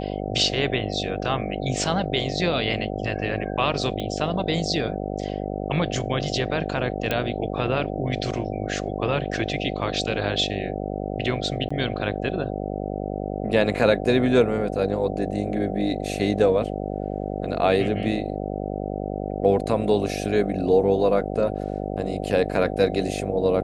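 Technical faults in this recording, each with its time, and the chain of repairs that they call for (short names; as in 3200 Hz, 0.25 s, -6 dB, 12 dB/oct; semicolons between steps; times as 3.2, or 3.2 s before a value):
buzz 50 Hz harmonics 15 -29 dBFS
4 pop -17 dBFS
7.11 pop -10 dBFS
11.69–11.71 gap 15 ms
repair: de-click; de-hum 50 Hz, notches 15; interpolate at 11.69, 15 ms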